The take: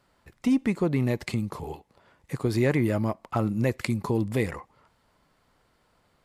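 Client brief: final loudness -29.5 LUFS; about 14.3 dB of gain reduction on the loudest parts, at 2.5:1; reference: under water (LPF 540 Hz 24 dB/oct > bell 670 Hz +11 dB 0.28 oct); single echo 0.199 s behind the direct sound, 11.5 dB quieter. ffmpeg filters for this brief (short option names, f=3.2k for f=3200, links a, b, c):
-af "acompressor=threshold=-42dB:ratio=2.5,lowpass=f=540:w=0.5412,lowpass=f=540:w=1.3066,equalizer=f=670:t=o:w=0.28:g=11,aecho=1:1:199:0.266,volume=11.5dB"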